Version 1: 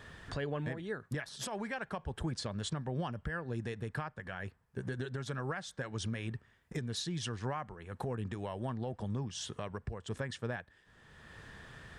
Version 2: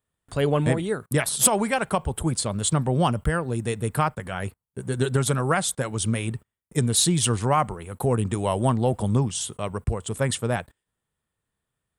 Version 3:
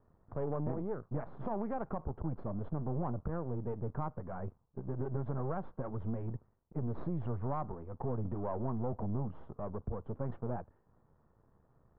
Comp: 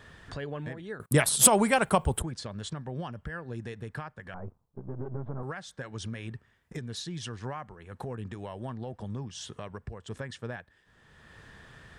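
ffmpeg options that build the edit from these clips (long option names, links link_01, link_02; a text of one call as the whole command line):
ffmpeg -i take0.wav -i take1.wav -i take2.wav -filter_complex "[0:a]asplit=3[link_01][link_02][link_03];[link_01]atrim=end=1.002[link_04];[1:a]atrim=start=0.998:end=2.222[link_05];[link_02]atrim=start=2.218:end=4.342[link_06];[2:a]atrim=start=4.338:end=5.432[link_07];[link_03]atrim=start=5.428[link_08];[link_04][link_05]acrossfade=duration=0.004:curve1=hsin:curve2=hsin[link_09];[link_09][link_06]acrossfade=duration=0.004:curve1=hsin:curve2=hsin[link_10];[link_10][link_07]acrossfade=duration=0.004:curve1=hsin:curve2=hsin[link_11];[link_11][link_08]acrossfade=duration=0.004:curve1=hsin:curve2=hsin" out.wav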